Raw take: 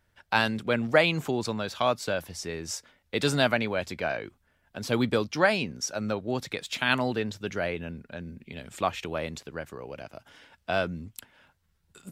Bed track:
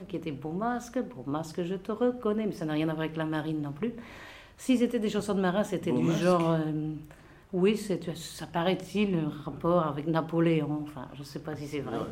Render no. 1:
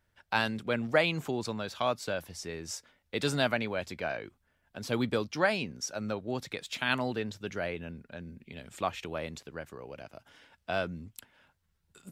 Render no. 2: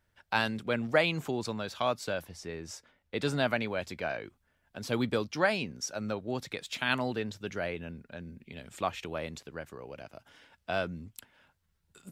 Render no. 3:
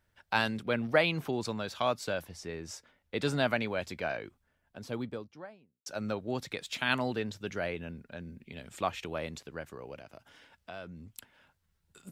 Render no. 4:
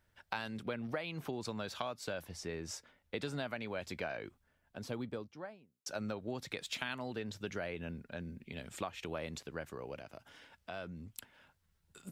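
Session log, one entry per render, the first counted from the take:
gain -4.5 dB
2.25–3.48 high shelf 3700 Hz -7.5 dB
0.62–1.33 bell 7300 Hz -14.5 dB 0.27 oct; 4.1–5.86 studio fade out; 9.98–11.14 compressor 2.5:1, threshold -45 dBFS
compressor 16:1, threshold -35 dBFS, peak gain reduction 16.5 dB

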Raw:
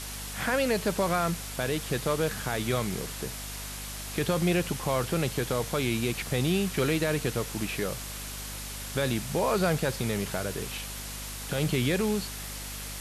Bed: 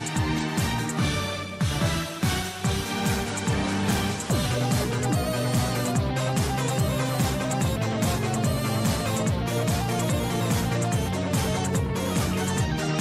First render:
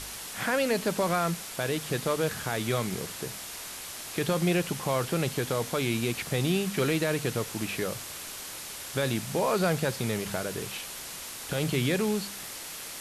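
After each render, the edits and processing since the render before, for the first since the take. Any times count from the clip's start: de-hum 50 Hz, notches 5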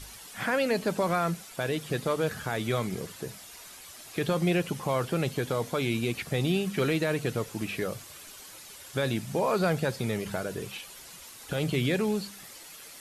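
denoiser 10 dB, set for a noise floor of -40 dBFS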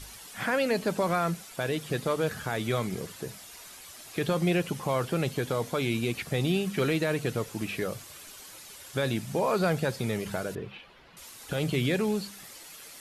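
10.55–11.17 air absorption 360 m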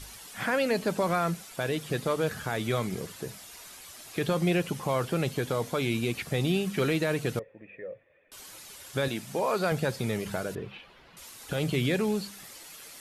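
7.39–8.32 vocal tract filter e; 9.08–9.72 HPF 300 Hz 6 dB/oct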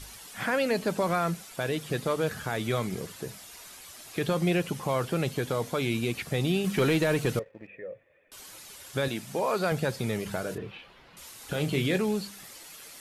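6.64–7.67 sample leveller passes 1; 10.41–11.98 doubler 27 ms -9 dB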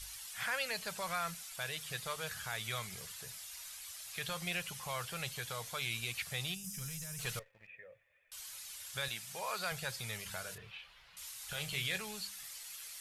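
6.54–7.19 spectral gain 270–4800 Hz -18 dB; passive tone stack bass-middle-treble 10-0-10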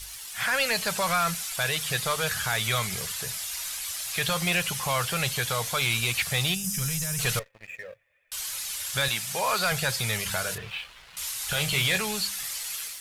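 AGC gain up to 7 dB; sample leveller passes 2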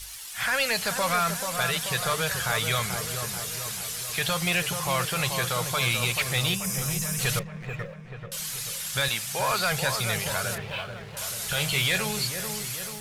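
dark delay 0.435 s, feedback 56%, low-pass 1300 Hz, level -5.5 dB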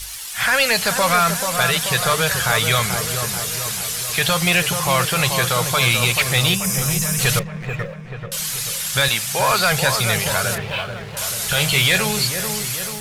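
gain +8.5 dB

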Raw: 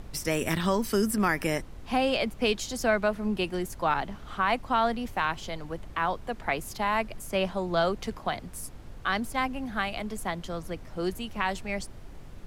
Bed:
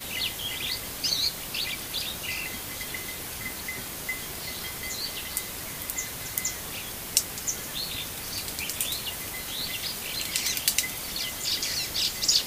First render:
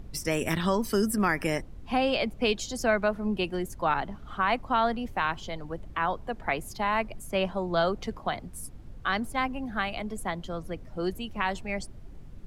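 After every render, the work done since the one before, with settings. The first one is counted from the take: denoiser 9 dB, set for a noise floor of -45 dBFS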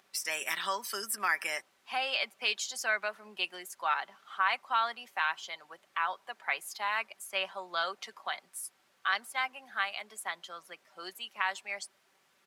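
HPF 1200 Hz 12 dB/oct; comb 5.2 ms, depth 34%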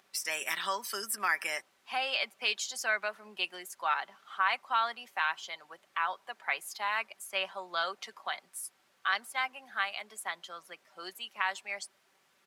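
nothing audible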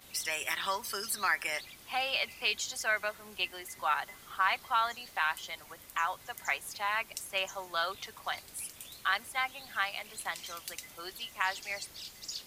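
add bed -18.5 dB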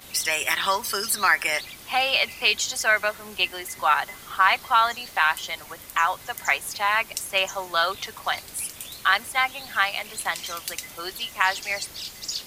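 gain +10 dB

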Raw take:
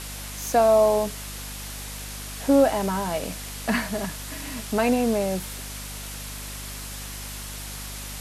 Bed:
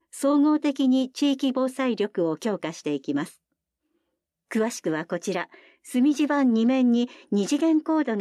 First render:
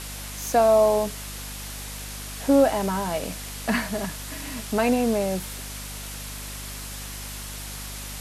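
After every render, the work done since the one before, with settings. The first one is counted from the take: nothing audible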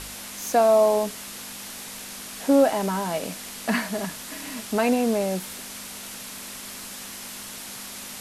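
de-hum 50 Hz, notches 3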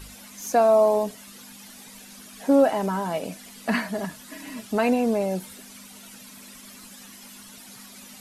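denoiser 12 dB, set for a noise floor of -38 dBFS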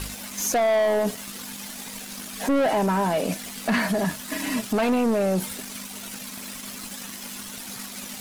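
sample leveller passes 3; limiter -17 dBFS, peak gain reduction 9 dB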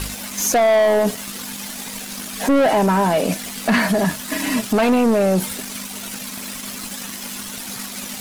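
gain +6 dB

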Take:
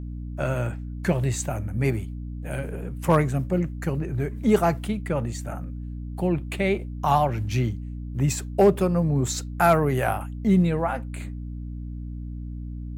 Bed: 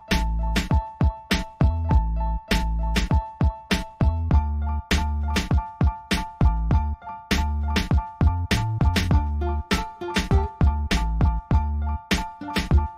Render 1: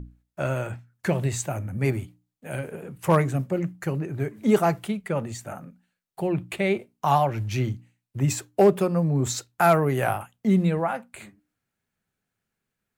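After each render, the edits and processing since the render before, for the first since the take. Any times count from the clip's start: notches 60/120/180/240/300 Hz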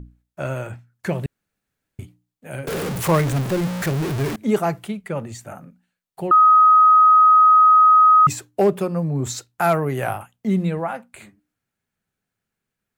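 1.26–1.99 room tone; 2.67–4.36 zero-crossing step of -21 dBFS; 6.31–8.27 bleep 1260 Hz -8.5 dBFS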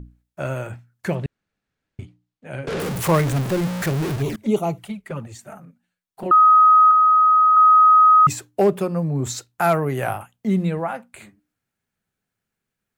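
1.15–2.8 LPF 5300 Hz; 4.16–6.26 envelope flanger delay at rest 11.3 ms, full sweep at -19 dBFS; 6.91–7.57 LPF 1400 Hz 6 dB/oct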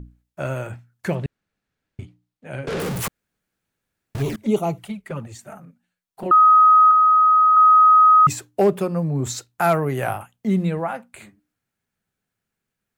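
3.08–4.15 room tone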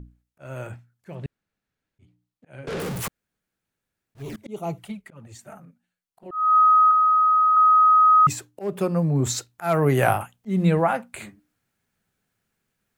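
auto swell 0.261 s; vocal rider within 5 dB 2 s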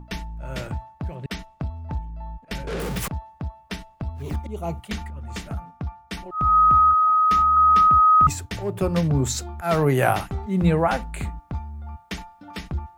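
add bed -10 dB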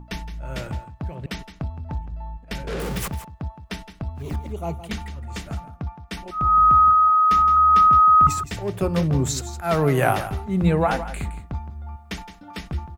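echo 0.166 s -12.5 dB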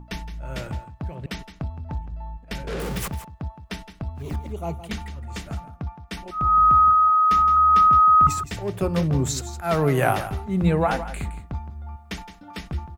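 gain -1 dB

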